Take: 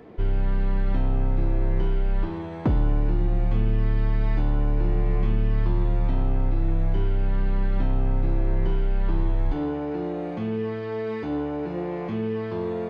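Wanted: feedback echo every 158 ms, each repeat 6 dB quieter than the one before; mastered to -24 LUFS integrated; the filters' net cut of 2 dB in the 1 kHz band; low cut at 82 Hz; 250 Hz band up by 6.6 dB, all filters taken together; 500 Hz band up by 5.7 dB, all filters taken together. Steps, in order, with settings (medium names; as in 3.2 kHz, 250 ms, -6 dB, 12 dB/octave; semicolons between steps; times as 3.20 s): high-pass 82 Hz; peaking EQ 250 Hz +7.5 dB; peaking EQ 500 Hz +5.5 dB; peaking EQ 1 kHz -6 dB; feedback delay 158 ms, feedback 50%, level -6 dB; trim +0.5 dB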